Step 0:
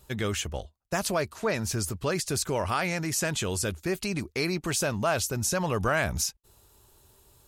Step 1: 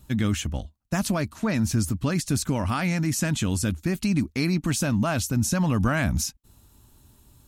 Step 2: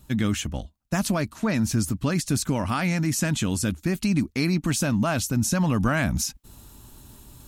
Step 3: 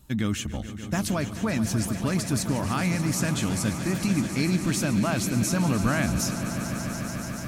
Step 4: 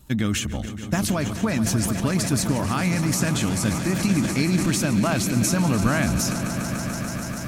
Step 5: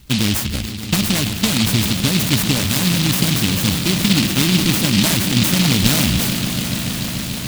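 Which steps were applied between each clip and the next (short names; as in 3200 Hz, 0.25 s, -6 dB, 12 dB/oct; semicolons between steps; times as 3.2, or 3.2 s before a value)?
resonant low shelf 330 Hz +6.5 dB, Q 3; notch 4800 Hz, Q 28
bell 84 Hz -5.5 dB 0.66 oct; reverse; upward compressor, threshold -38 dBFS; reverse; gain +1 dB
swelling echo 0.145 s, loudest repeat 5, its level -13.5 dB; gain -2.5 dB
transient shaper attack +3 dB, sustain +7 dB; gain +2 dB
noise-modulated delay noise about 3300 Hz, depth 0.39 ms; gain +5.5 dB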